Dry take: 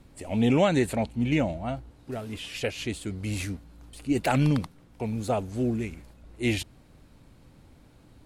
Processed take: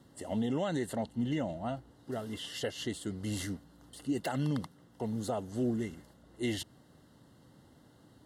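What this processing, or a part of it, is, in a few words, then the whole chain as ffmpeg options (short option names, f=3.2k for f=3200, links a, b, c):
PA system with an anti-feedback notch: -af "highpass=120,asuperstop=centerf=2400:order=20:qfactor=4.2,alimiter=limit=-21dB:level=0:latency=1:release=235,volume=-2.5dB"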